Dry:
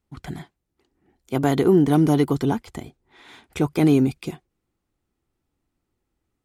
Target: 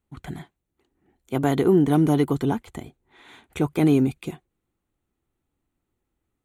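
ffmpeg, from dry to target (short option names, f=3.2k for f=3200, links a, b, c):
-af "equalizer=f=5.1k:w=5.3:g=-14.5,volume=-1.5dB"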